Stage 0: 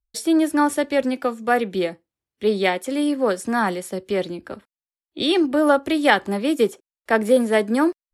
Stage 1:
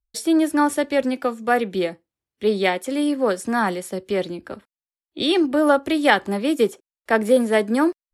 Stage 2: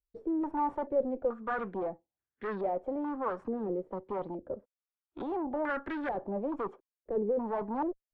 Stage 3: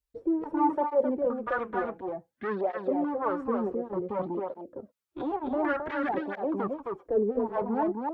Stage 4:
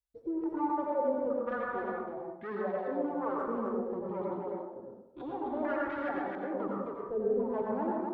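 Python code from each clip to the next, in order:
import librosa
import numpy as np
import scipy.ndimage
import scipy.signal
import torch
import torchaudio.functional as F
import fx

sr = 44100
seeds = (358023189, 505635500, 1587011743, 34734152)

y1 = x
y2 = fx.tube_stage(y1, sr, drive_db=26.0, bias=0.45)
y2 = fx.filter_held_lowpass(y2, sr, hz=2.3, low_hz=450.0, high_hz=1600.0)
y2 = y2 * 10.0 ** (-8.0 / 20.0)
y3 = y2 + 10.0 ** (-4.0 / 20.0) * np.pad(y2, (int(264 * sr / 1000.0), 0))[:len(y2)]
y3 = fx.flanger_cancel(y3, sr, hz=0.55, depth_ms=6.3)
y3 = y3 * 10.0 ** (6.5 / 20.0)
y4 = fx.rev_plate(y3, sr, seeds[0], rt60_s=0.87, hf_ratio=0.4, predelay_ms=75, drr_db=-1.5)
y4 = y4 * 10.0 ** (-8.5 / 20.0)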